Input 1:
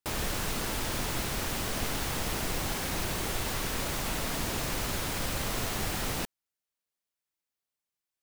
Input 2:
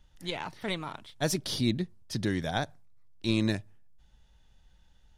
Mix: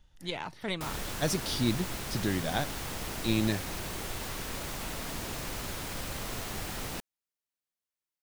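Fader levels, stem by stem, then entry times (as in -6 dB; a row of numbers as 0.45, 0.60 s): -5.0, -1.0 dB; 0.75, 0.00 s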